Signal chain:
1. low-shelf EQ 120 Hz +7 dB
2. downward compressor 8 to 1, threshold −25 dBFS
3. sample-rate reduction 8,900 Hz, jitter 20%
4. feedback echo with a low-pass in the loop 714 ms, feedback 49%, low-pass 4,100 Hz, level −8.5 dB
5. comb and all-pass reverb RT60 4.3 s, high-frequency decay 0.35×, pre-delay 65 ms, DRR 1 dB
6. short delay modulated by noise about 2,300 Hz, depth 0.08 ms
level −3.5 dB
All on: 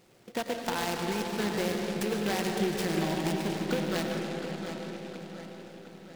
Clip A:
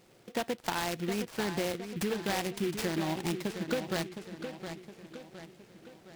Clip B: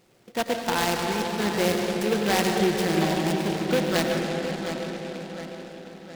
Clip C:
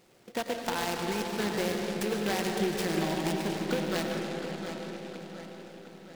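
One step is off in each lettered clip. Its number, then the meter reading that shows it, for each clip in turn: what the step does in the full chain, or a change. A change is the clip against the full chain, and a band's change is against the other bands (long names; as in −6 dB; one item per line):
5, change in momentary loudness spread +3 LU
2, average gain reduction 4.0 dB
1, 125 Hz band −2.0 dB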